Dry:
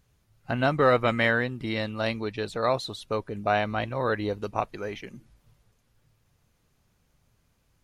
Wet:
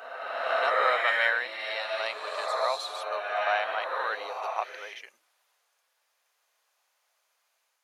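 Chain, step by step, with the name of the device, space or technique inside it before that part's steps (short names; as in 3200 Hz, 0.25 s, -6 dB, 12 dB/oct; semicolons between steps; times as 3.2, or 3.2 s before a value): ghost voice (reverse; reverb RT60 1.9 s, pre-delay 54 ms, DRR -0.5 dB; reverse; HPF 670 Hz 24 dB/oct); gain -1.5 dB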